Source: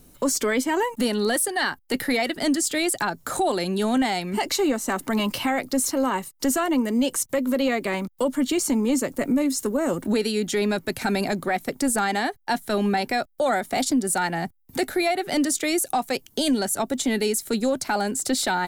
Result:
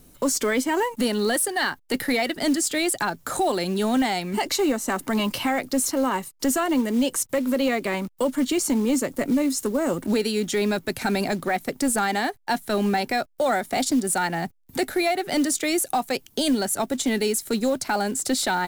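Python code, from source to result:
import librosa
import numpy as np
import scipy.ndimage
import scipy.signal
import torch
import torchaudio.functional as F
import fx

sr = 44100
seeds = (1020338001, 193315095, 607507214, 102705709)

y = fx.quant_companded(x, sr, bits=6)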